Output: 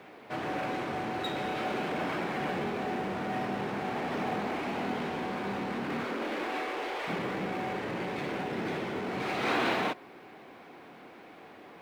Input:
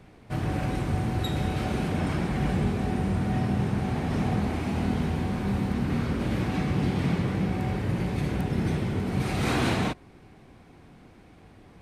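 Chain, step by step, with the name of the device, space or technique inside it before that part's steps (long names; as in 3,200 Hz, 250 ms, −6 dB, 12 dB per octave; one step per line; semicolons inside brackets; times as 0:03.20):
0:06.04–0:07.07: high-pass filter 190 Hz → 470 Hz 24 dB per octave
phone line with mismatched companding (band-pass filter 390–3,500 Hz; mu-law and A-law mismatch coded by mu)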